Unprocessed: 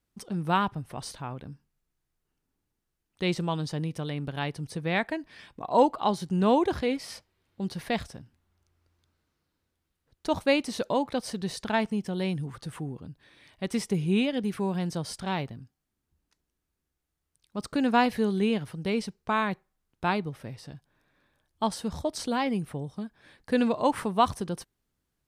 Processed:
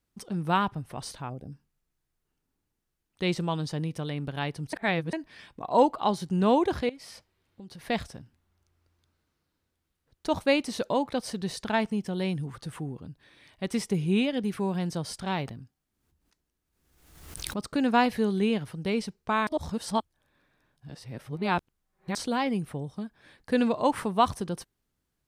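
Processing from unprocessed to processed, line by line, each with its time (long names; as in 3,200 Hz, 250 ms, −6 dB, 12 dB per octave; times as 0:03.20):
0:01.30–0:01.52: gain on a spectral selection 800–4,600 Hz −15 dB
0:04.73–0:05.13: reverse
0:06.89–0:07.89: downward compressor 8 to 1, threshold −42 dBFS
0:15.30–0:17.64: background raised ahead of every attack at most 57 dB per second
0:19.47–0:22.15: reverse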